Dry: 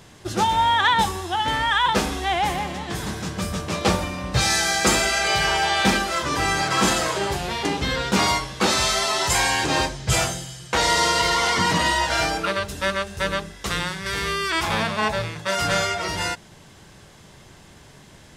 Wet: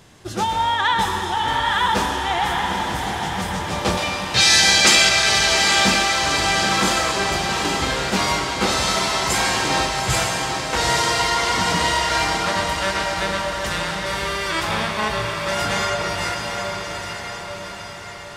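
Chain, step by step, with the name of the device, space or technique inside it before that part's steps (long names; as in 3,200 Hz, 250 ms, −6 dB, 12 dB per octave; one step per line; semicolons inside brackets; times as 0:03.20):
0:03.97–0:05.09: meter weighting curve D
feedback delay with all-pass diffusion 827 ms, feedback 57%, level −5 dB
filtered reverb send (on a send at −4.5 dB: high-pass filter 520 Hz 24 dB per octave + low-pass filter 8,000 Hz + convolution reverb RT60 2.5 s, pre-delay 98 ms)
on the sum: level −1.5 dB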